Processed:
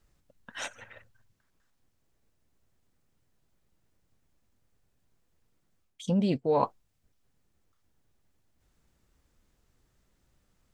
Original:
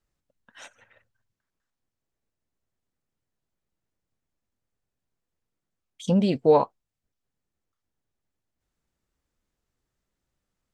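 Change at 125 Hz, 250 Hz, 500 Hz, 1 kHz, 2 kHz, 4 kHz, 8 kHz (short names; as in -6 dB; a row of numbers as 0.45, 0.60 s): -4.0 dB, -4.5 dB, -7.5 dB, -4.5 dB, +3.5 dB, -2.0 dB, n/a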